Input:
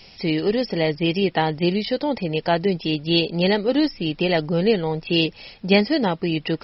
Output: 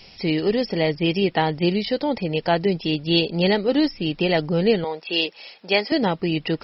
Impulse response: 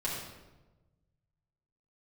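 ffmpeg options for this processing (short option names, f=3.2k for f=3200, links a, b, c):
-filter_complex "[0:a]asettb=1/sr,asplit=3[a][b][c];[a]atrim=end=4.844[d];[b]atrim=start=4.84:end=5.92,asetpts=PTS-STARTPTS,afade=t=in:d=0.004:c=qsin,afade=t=out:st=1.076:d=0.004:c=qsin,highpass=470[e];[c]atrim=start=5.916[f];[d][e]acrossfade=d=0.004:c1=hsin:c2=qsin[g];[g][f]acrossfade=d=0.004:c1=qsin:c2=hsin"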